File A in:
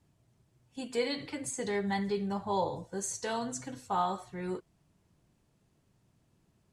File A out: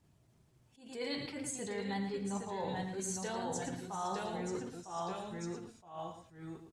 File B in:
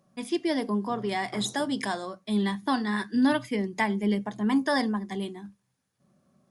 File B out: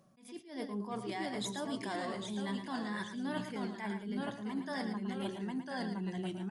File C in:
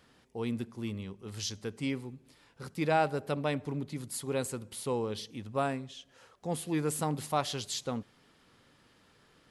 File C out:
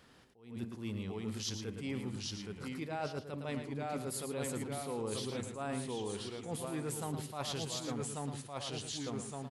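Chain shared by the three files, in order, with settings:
echoes that change speed 0.723 s, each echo -1 st, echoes 2, each echo -6 dB; reverse; compressor 12:1, threshold -36 dBFS; reverse; echo 0.112 s -8.5 dB; attack slew limiter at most 120 dB/s; gain +1 dB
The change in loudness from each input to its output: -5.5, -11.0, -5.0 LU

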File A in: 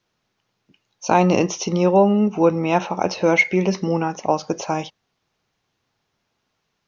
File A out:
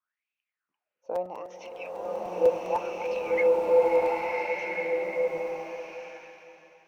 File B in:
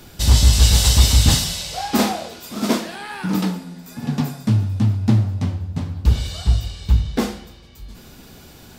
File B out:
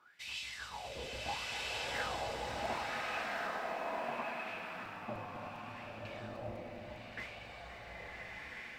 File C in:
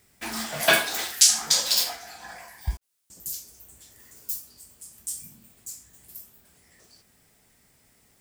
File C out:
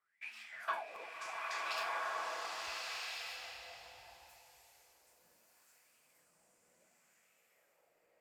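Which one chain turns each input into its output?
high shelf 9700 Hz +8 dB; wah 0.71 Hz 490–2600 Hz, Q 9.3; on a send: echo with dull and thin repeats by turns 0.261 s, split 990 Hz, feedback 56%, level -11 dB; on the sum: crackling interface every 0.10 s, samples 256, repeat, from 0.95; bloom reverb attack 1.4 s, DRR -5 dB; gain -3.5 dB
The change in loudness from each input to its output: -8.0, -22.0, -18.0 LU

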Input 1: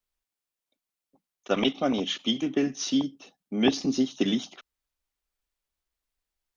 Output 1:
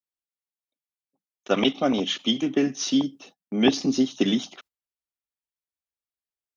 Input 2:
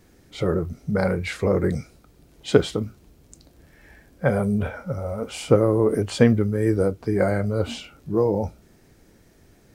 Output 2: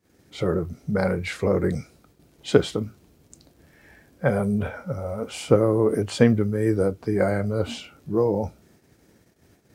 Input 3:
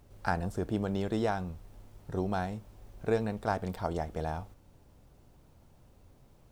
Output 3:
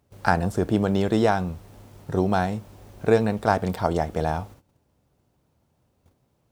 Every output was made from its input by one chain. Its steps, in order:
gate -54 dBFS, range -16 dB; HPF 77 Hz; match loudness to -24 LUFS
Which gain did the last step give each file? +3.0, -1.0, +10.0 dB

